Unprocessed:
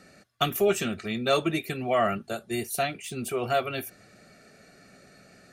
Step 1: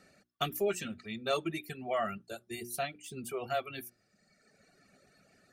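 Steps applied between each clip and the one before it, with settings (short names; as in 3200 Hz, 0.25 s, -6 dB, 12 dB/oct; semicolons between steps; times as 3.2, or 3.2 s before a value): reverb removal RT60 1.4 s; notches 60/120/180/240/300/360 Hz; gain -7.5 dB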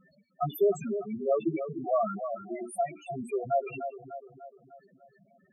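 split-band echo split 1900 Hz, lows 0.298 s, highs 80 ms, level -9 dB; loudest bins only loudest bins 4; gain +7.5 dB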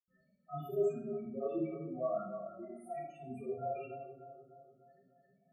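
reverb RT60 0.75 s, pre-delay 77 ms; gain +1.5 dB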